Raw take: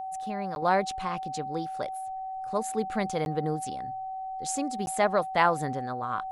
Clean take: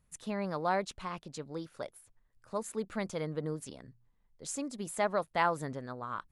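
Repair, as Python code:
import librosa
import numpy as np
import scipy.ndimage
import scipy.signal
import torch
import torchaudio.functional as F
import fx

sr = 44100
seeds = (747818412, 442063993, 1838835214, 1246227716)

y = fx.notch(x, sr, hz=760.0, q=30.0)
y = fx.fix_interpolate(y, sr, at_s=(0.55, 3.25, 4.86), length_ms=11.0)
y = fx.fix_level(y, sr, at_s=0.62, step_db=-6.0)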